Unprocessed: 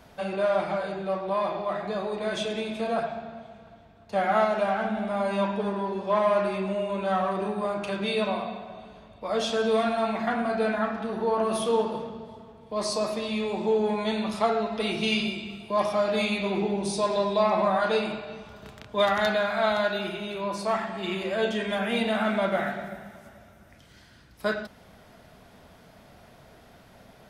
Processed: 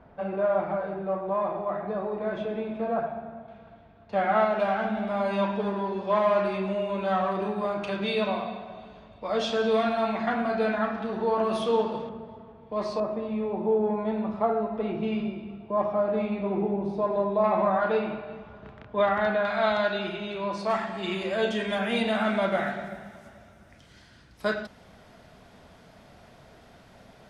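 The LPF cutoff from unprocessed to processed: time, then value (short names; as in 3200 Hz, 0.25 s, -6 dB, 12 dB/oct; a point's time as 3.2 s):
1400 Hz
from 3.48 s 3100 Hz
from 4.6 s 5100 Hz
from 12.09 s 2400 Hz
from 13 s 1100 Hz
from 17.44 s 1900 Hz
from 19.45 s 4600 Hz
from 20.7 s 9400 Hz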